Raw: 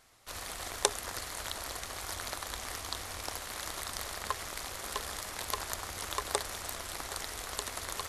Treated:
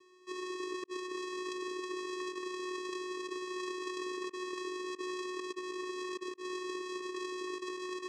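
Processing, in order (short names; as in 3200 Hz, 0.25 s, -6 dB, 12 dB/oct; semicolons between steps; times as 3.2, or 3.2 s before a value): vocoder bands 4, square 366 Hz; negative-ratio compressor -42 dBFS, ratio -0.5; gain +2.5 dB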